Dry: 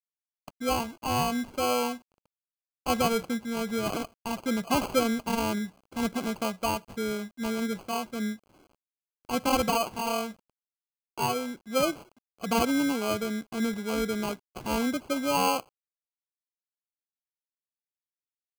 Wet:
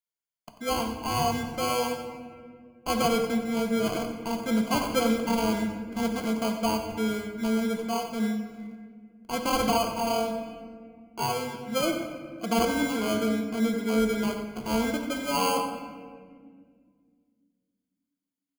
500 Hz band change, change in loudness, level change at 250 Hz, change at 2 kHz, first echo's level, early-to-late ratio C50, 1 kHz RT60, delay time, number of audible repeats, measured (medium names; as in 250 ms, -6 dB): +2.0 dB, +1.5 dB, +2.5 dB, +0.5 dB, -11.0 dB, 5.5 dB, 1.6 s, 91 ms, 1